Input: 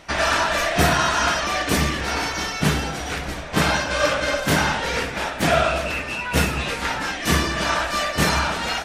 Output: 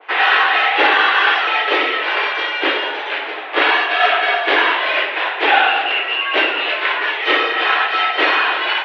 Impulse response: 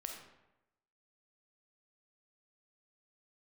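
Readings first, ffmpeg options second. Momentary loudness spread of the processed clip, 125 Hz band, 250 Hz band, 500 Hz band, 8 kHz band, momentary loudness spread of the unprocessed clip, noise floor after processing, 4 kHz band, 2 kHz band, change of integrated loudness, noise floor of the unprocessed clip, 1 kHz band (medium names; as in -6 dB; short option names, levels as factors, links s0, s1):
5 LU, under -40 dB, -5.0 dB, +2.5 dB, under -20 dB, 6 LU, -25 dBFS, +7.0 dB, +8.5 dB, +6.0 dB, -31 dBFS, +6.5 dB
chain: -filter_complex "[0:a]highpass=f=220:t=q:w=0.5412,highpass=f=220:t=q:w=1.307,lowpass=f=3200:t=q:w=0.5176,lowpass=f=3200:t=q:w=0.7071,lowpass=f=3200:t=q:w=1.932,afreqshift=130,asplit=2[s0][s1];[1:a]atrim=start_sample=2205,lowshelf=f=410:g=-10[s2];[s1][s2]afir=irnorm=-1:irlink=0,volume=1.41[s3];[s0][s3]amix=inputs=2:normalize=0,adynamicequalizer=threshold=0.0501:dfrequency=1900:dqfactor=0.7:tfrequency=1900:tqfactor=0.7:attack=5:release=100:ratio=0.375:range=2.5:mode=boostabove:tftype=highshelf"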